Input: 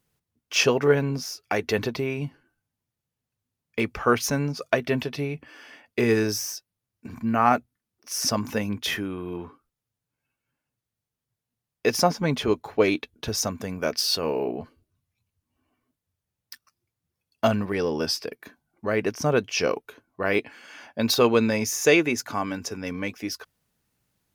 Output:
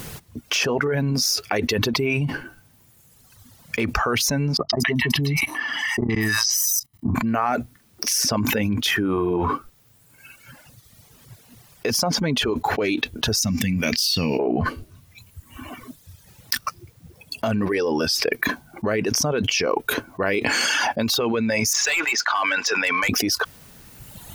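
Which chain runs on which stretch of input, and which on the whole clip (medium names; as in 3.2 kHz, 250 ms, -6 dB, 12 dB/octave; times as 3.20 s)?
4.57–7.15 s: three bands offset in time lows, mids, highs 120/230 ms, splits 980/5800 Hz + level held to a coarse grid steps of 21 dB + comb 1 ms, depth 84%
13.41–14.39 s: high-order bell 710 Hz -16 dB 2.5 oct + de-hum 397.3 Hz, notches 18 + hard clipper -17 dBFS
21.73–23.09 s: Butterworth band-pass 2.1 kHz, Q 0.54 + compression 4:1, threshold -25 dBFS + hard clipper -30 dBFS
whole clip: reverb removal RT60 1.3 s; peak limiter -15.5 dBFS; level flattener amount 100%; trim -1 dB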